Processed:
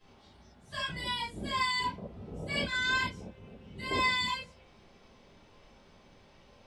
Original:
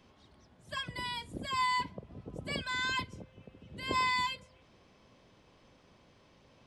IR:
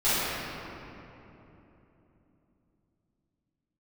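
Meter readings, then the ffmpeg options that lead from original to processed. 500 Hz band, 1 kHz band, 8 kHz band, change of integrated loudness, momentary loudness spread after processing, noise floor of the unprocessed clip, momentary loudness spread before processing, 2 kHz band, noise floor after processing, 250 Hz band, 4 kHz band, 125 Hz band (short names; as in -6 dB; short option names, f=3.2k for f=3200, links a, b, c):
+4.0 dB, -0.5 dB, +2.0 dB, +2.5 dB, 19 LU, -64 dBFS, 17 LU, +4.0 dB, -60 dBFS, +3.5 dB, +3.5 dB, +2.5 dB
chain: -filter_complex "[1:a]atrim=start_sample=2205,atrim=end_sample=3969[a];[0:a][a]afir=irnorm=-1:irlink=0,volume=-7.5dB"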